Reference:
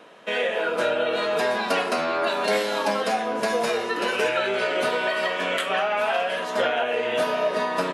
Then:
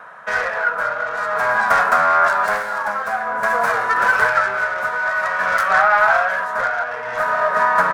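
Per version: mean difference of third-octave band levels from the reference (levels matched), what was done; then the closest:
8.0 dB: phase distortion by the signal itself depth 0.22 ms
drawn EQ curve 130 Hz 0 dB, 330 Hz −19 dB, 720 Hz 0 dB, 1,500 Hz +10 dB, 2,900 Hz −15 dB, 11,000 Hz −7 dB
amplitude tremolo 0.51 Hz, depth 59%
level +8 dB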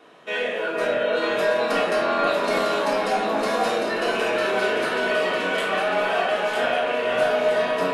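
3.0 dB: in parallel at −6 dB: hard clipping −18 dBFS, distortion −19 dB
on the sum: delay that swaps between a low-pass and a high-pass 476 ms, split 2,100 Hz, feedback 73%, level −2.5 dB
rectangular room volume 780 cubic metres, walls furnished, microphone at 3.4 metres
level −9 dB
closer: second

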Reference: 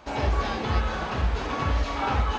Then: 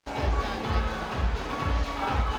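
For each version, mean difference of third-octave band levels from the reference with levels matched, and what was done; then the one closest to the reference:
3.0 dB: on a send: echo with a time of its own for lows and highs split 1,100 Hz, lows 139 ms, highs 307 ms, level −14.5 dB
on the sum: dead-zone distortion −44.5 dBFS
level −1.5 dB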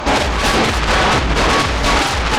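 6.5 dB: in parallel at −9.5 dB: sine wavefolder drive 19 dB, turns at −12 dBFS
on the sum: boost into a limiter +20.5 dB
level −9 dB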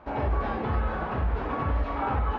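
5.0 dB: brickwall limiter −17.5 dBFS, peak gain reduction 5 dB
low-pass filter 1,600 Hz 12 dB per octave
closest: first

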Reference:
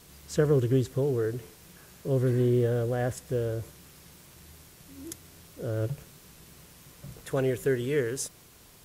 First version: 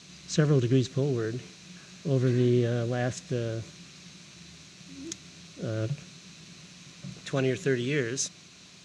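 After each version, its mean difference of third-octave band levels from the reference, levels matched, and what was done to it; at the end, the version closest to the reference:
5.5 dB: loudspeaker in its box 120–7,100 Hz, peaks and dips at 180 Hz +8 dB, 470 Hz −8 dB, 880 Hz −7 dB, 2,500 Hz +7 dB, 4,000 Hz +9 dB, 6,200 Hz +7 dB
level +2 dB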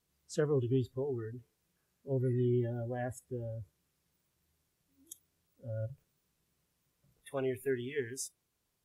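12.5 dB: noise reduction from a noise print of the clip's start 21 dB
level −6 dB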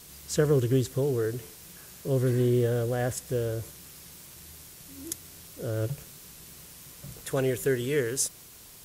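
2.5 dB: high-shelf EQ 3,400 Hz +8 dB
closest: third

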